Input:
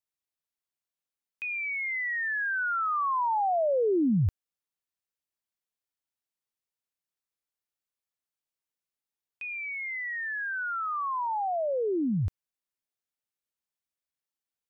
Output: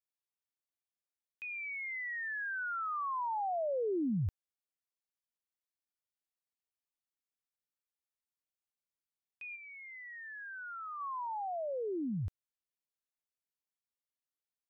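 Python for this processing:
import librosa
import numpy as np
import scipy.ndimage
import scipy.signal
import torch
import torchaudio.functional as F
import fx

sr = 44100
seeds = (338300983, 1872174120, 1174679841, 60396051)

y = fx.lowpass(x, sr, hz=1200.0, slope=6, at=(9.55, 10.99), fade=0.02)
y = y * 10.0 ** (-8.5 / 20.0)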